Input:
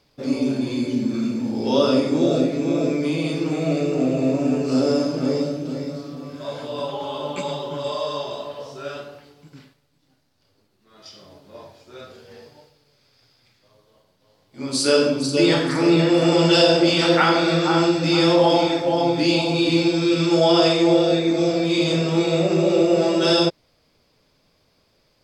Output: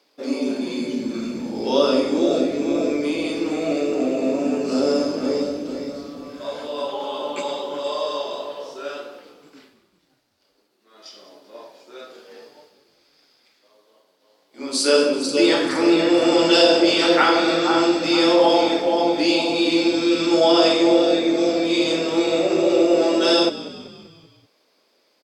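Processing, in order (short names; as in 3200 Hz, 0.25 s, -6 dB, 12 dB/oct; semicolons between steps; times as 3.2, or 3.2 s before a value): HPF 270 Hz 24 dB/oct; on a send: frequency-shifting echo 0.193 s, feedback 53%, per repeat -45 Hz, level -16 dB; on the sum: gain +1 dB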